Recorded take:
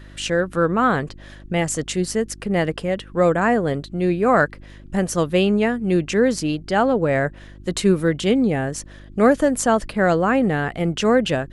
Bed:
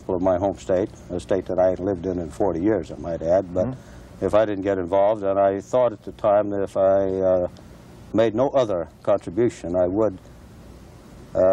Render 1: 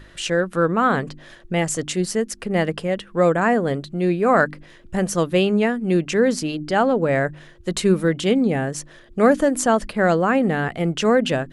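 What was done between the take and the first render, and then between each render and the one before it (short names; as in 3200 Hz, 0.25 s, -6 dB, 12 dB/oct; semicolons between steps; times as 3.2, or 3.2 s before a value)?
de-hum 50 Hz, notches 6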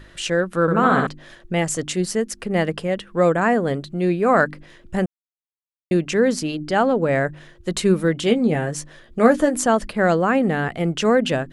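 0.61–1.07 flutter echo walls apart 11.5 m, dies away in 0.92 s; 5.06–5.91 mute; 8.23–9.57 doubler 13 ms -7.5 dB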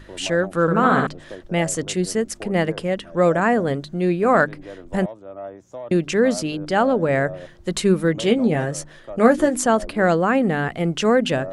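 add bed -15.5 dB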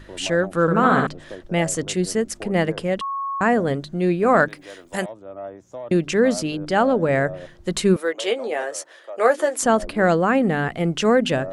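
3.01–3.41 bleep 1100 Hz -23.5 dBFS; 4.48–5.09 tilt +3.5 dB/oct; 7.96–9.63 HPF 430 Hz 24 dB/oct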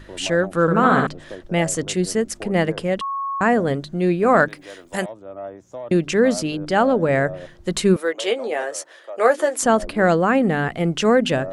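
gain +1 dB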